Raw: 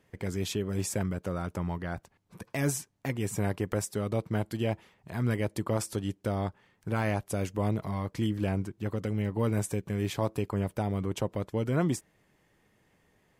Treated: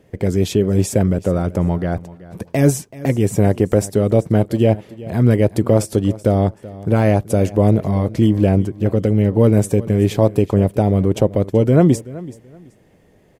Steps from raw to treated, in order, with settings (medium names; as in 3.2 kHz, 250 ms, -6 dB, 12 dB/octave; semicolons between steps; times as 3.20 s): resonant low shelf 780 Hz +7 dB, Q 1.5; feedback delay 380 ms, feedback 24%, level -18.5 dB; trim +8 dB